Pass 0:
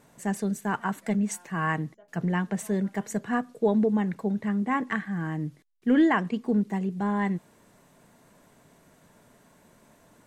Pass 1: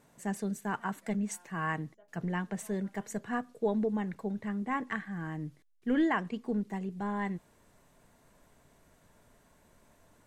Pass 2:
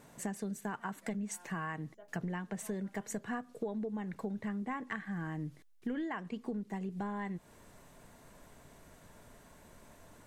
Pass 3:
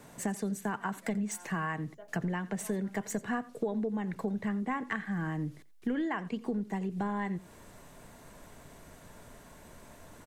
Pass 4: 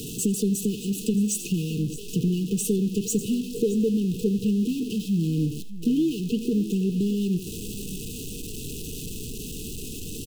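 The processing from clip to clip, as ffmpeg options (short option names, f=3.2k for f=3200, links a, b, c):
-af "asubboost=boost=4:cutoff=79,volume=-5.5dB"
-af "acompressor=threshold=-41dB:ratio=10,volume=6dB"
-filter_complex "[0:a]aecho=1:1:87:0.106,acrossover=split=260|630|2500[a][b][c][d];[d]asoftclip=type=hard:threshold=-38.5dB[e];[a][b][c][e]amix=inputs=4:normalize=0,volume=5dB"
-af "aeval=exprs='val(0)+0.5*0.0126*sgn(val(0))':c=same,aecho=1:1:618:0.158,afftfilt=real='re*(1-between(b*sr/4096,480,2500))':imag='im*(1-between(b*sr/4096,480,2500))':win_size=4096:overlap=0.75,volume=8.5dB"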